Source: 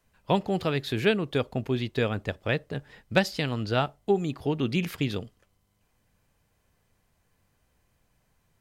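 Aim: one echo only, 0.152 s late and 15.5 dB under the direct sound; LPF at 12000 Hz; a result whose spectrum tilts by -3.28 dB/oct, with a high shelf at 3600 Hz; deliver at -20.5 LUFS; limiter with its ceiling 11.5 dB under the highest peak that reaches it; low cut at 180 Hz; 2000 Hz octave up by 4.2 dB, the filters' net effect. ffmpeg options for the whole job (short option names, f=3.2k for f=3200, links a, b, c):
-af "highpass=180,lowpass=12k,equalizer=f=2k:t=o:g=3.5,highshelf=f=3.6k:g=7,alimiter=limit=-15dB:level=0:latency=1,aecho=1:1:152:0.168,volume=9.5dB"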